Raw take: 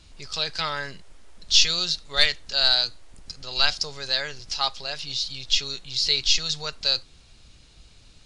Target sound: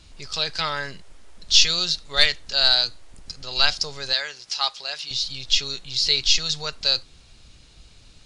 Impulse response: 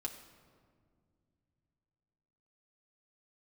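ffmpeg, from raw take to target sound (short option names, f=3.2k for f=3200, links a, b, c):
-filter_complex "[0:a]asettb=1/sr,asplit=3[a][b][c];[a]atrim=end=4.134[d];[b]atrim=start=4.13:end=5.11,asetpts=PTS-STARTPTS,afade=t=in:d=0.004:c=qsin,afade=t=out:st=0.976:d=0.004:c=qsin,highpass=f=820:p=1[e];[c]atrim=start=5.106[f];[d][e]acrossfade=d=0.004:c1=hsin:c2=qsin[g];[g][f]acrossfade=d=0.004:c1=qsin:c2=hsin,volume=2dB"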